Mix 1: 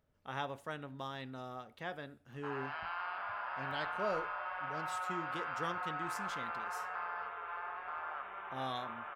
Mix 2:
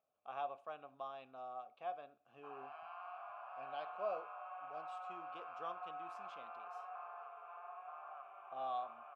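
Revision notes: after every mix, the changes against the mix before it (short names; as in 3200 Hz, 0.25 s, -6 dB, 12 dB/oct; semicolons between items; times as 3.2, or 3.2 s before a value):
speech +5.0 dB; master: add vowel filter a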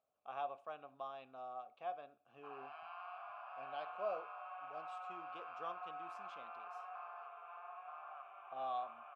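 background: add tilt +2.5 dB/oct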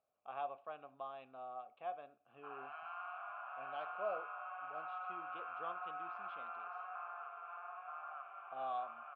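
background: add bell 1400 Hz +9.5 dB 0.29 oct; master: add LPF 3400 Hz 24 dB/oct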